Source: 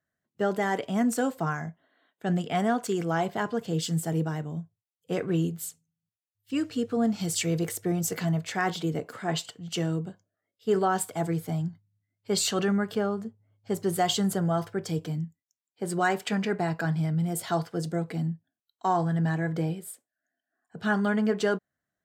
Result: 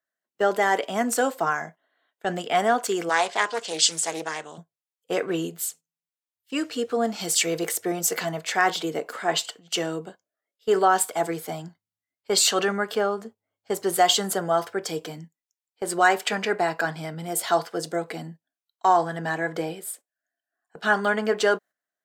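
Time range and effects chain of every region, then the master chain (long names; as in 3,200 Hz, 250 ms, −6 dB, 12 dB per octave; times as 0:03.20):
0:03.09–0:04.58: low-pass filter 7,900 Hz 24 dB per octave + spectral tilt +3.5 dB per octave + highs frequency-modulated by the lows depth 0.36 ms
whole clip: high-pass filter 440 Hz 12 dB per octave; noise gate −50 dBFS, range −10 dB; level +7.5 dB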